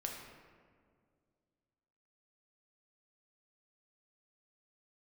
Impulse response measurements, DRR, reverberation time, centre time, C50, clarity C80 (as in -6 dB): 0.0 dB, 2.0 s, 62 ms, 3.0 dB, 4.5 dB